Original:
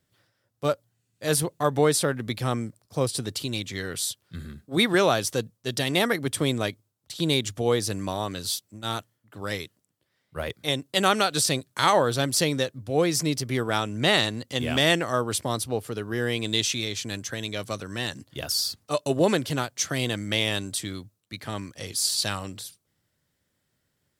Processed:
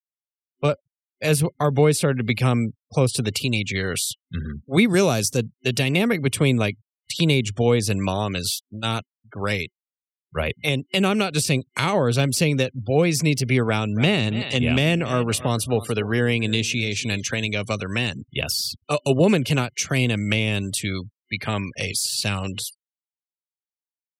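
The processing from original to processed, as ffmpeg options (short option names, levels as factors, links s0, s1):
-filter_complex "[0:a]asettb=1/sr,asplit=3[s0][s1][s2];[s0]atrim=end=4.854[s3];[s1]atrim=start=4.85:end=5.37,asetpts=PTS-STARTPTS,afade=t=in:d=0.004:c=qsin,afade=t=out:st=0.516:d=0.004:c=qsin,highshelf=f=4100:t=q:w=1.5:g=9[s4];[s2]atrim=start=5.366[s5];[s3][s4]acrossfade=d=0.004:c1=hsin:c2=qsin[s6];[s6][s5]acrossfade=d=0.004:c1=qsin:c2=hsin,asettb=1/sr,asplit=3[s7][s8][s9];[s7]atrim=end=13.684[s10];[s8]atrim=start=13.68:end=17.54,asetpts=PTS-STARTPTS,afade=t=in:d=0.004:c=qsin,afade=t=out:st=3.856:d=0.004:c=qsin,aecho=1:1:281|562|843:0.126|0.0378|0.0113,atrim=end_sample=170226[s11];[s9]atrim=start=17.536[s12];[s10][s11]acrossfade=d=0.004:c1=hsin:c2=qsin[s13];[s13][s12]acrossfade=d=0.004:c1=qsin:c2=hsin,afftfilt=real='re*gte(hypot(re,im),0.00562)':imag='im*gte(hypot(re,im),0.00562)':win_size=1024:overlap=0.75,superequalizer=6b=0.562:12b=2.82,acrossover=split=380[s14][s15];[s15]acompressor=threshold=0.0251:ratio=5[s16];[s14][s16]amix=inputs=2:normalize=0,volume=2.82"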